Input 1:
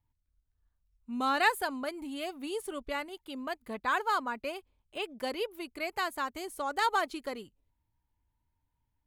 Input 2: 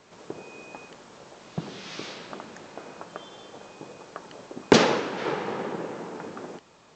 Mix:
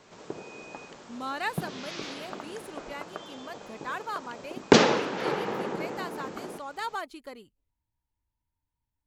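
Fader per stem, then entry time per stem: -5.5, -0.5 dB; 0.00, 0.00 s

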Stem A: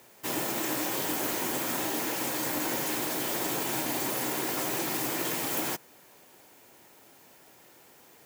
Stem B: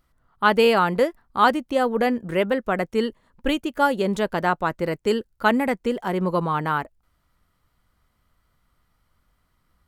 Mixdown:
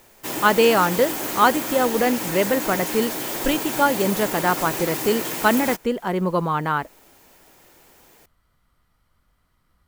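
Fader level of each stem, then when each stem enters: +3.0, +1.0 dB; 0.00, 0.00 s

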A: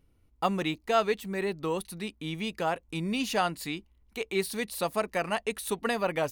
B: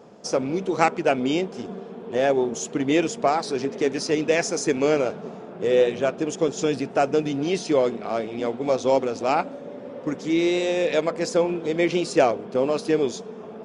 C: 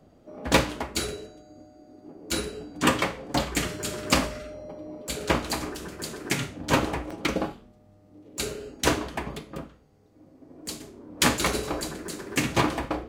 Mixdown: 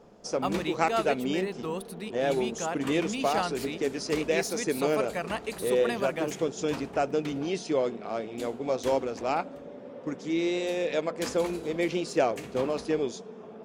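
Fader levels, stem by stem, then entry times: -3.5, -6.5, -17.0 dB; 0.00, 0.00, 0.00 s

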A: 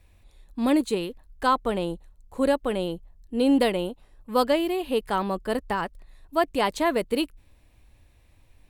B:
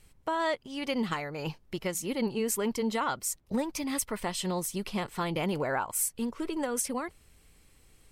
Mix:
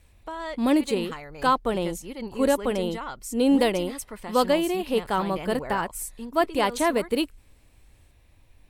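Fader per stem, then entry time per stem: +0.5, -5.0 dB; 0.00, 0.00 s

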